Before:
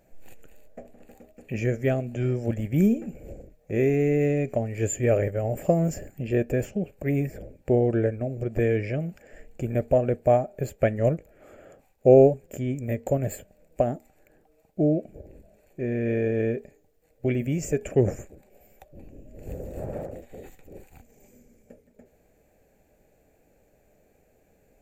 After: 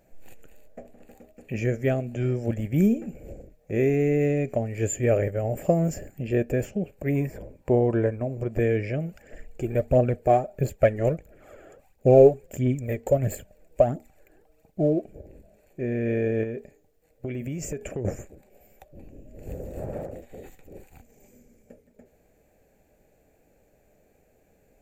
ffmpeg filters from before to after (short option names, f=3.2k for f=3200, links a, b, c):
-filter_complex "[0:a]asettb=1/sr,asplit=3[a][b][c];[a]atrim=end=7.154[d];[b]atrim=start=7.15:end=8.51,asetpts=PTS-STARTPTS,afade=t=in:d=0.004:c=qsin,afade=t=out:st=1.356:d=0.004:c=qsin,equalizer=f=1k:w=4.6:g=14.5[e];[c]atrim=start=8.506[f];[d][e]acrossfade=d=0.004:c1=hsin:c2=qsin[g];[g][f]acrossfade=d=0.004:c1=qsin:c2=hsin,asplit=3[h][i][j];[h]afade=t=out:st=9.06:d=0.02[k];[i]aphaser=in_gain=1:out_gain=1:delay=3:decay=0.5:speed=1.5:type=triangular,afade=t=in:st=9.06:d=0.02,afade=t=out:st=15.12:d=0.02[l];[j]afade=t=in:st=15.12:d=0.02[m];[k][l][m]amix=inputs=3:normalize=0,asettb=1/sr,asplit=3[n][o][p];[n]atrim=end=16.434[q];[o]atrim=start=16.43:end=18.05,asetpts=PTS-STARTPTS,afade=t=in:d=0.004:c=qsin,afade=t=out:st=1.616:d=0.004:c=qsin,acompressor=threshold=-28dB:ratio=6:attack=3.2:release=140:knee=1:detection=peak[r];[p]atrim=start=18.046[s];[q][r]acrossfade=d=0.004:c1=hsin:c2=qsin[t];[t][s]acrossfade=d=0.004:c1=qsin:c2=hsin"